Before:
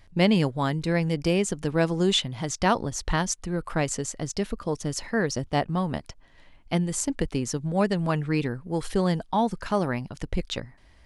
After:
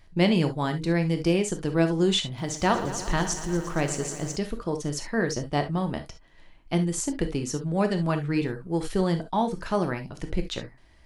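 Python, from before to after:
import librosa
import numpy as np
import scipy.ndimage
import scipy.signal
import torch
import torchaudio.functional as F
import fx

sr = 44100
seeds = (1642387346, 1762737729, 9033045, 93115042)

y = fx.peak_eq(x, sr, hz=340.0, db=4.0, octaves=0.24)
y = fx.rev_gated(y, sr, seeds[0], gate_ms=90, shape='flat', drr_db=6.5)
y = fx.echo_crushed(y, sr, ms=117, feedback_pct=80, bits=8, wet_db=-12.5, at=(2.26, 4.36))
y = F.gain(torch.from_numpy(y), -2.0).numpy()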